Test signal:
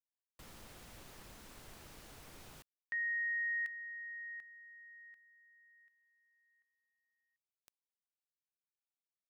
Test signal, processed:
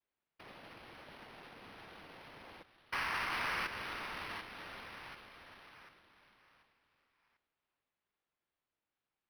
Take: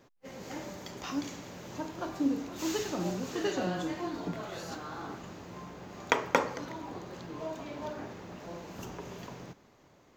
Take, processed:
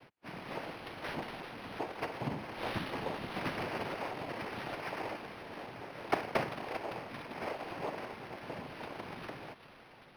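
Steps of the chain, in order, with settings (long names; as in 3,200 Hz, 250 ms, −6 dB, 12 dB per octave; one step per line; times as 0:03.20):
lower of the sound and its delayed copy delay 2.3 ms
notch comb filter 1,200 Hz
delay with a high-pass on its return 396 ms, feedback 50%, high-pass 2,400 Hz, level −11.5 dB
hard clipping −22 dBFS
dynamic equaliser 1,100 Hz, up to +6 dB, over −55 dBFS, Q 1.9
high-pass filter 670 Hz 12 dB per octave
downward compressor 1.5 to 1, threshold −59 dBFS
frequency shifter −280 Hz
cochlear-implant simulation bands 4
linearly interpolated sample-rate reduction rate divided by 6×
level +11.5 dB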